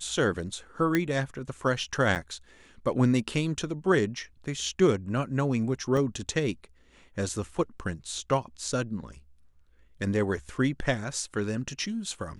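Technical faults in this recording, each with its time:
0:00.95: click −11 dBFS
0:02.15–0:02.16: drop-out 8.8 ms
0:05.97: drop-out 2.4 ms

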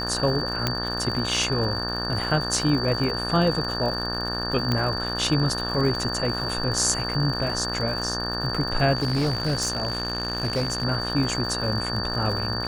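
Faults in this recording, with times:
mains buzz 60 Hz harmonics 30 −31 dBFS
surface crackle 130 per second −31 dBFS
whistle 4,600 Hz −29 dBFS
0:00.67: click −7 dBFS
0:04.72: click −11 dBFS
0:08.97–0:10.85: clipping −19.5 dBFS

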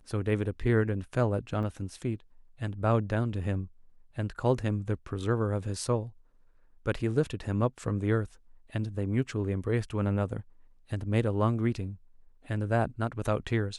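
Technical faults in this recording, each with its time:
0:01.63: drop-out 2.4 ms

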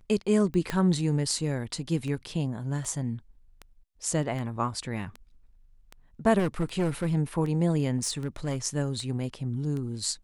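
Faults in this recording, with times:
scratch tick 78 rpm −25 dBFS
0:00.70: click −15 dBFS
0:06.38–0:07.15: clipping −22 dBFS
0:07.97–0:08.57: clipping −23.5 dBFS

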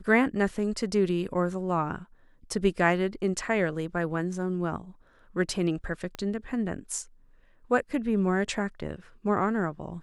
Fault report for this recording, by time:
0:06.15: click −22 dBFS

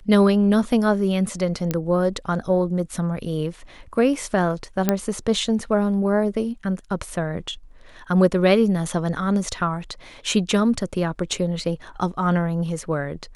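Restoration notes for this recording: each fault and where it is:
0:01.71: click −9 dBFS
0:04.89: click −4 dBFS

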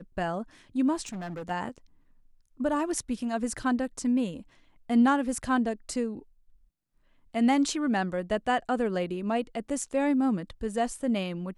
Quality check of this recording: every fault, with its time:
0:01.06–0:01.51: clipping −33.5 dBFS

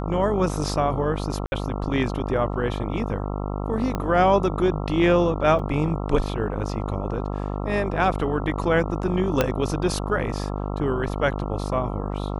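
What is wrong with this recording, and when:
mains buzz 50 Hz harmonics 27 −28 dBFS
0:01.46–0:01.52: drop-out 61 ms
0:03.95: click −13 dBFS
0:05.59: drop-out 3.8 ms
0:09.41: click −5 dBFS

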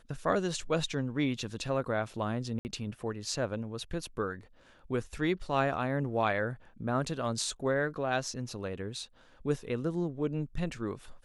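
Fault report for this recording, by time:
0:02.59–0:02.65: drop-out 59 ms

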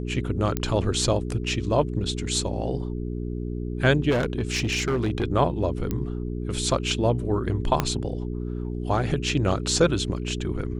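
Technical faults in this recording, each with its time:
mains hum 60 Hz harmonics 7 −30 dBFS
0:00.57: click −10 dBFS
0:04.10–0:05.24: clipping −19.5 dBFS
0:05.91: click −14 dBFS
0:07.80: click −7 dBFS

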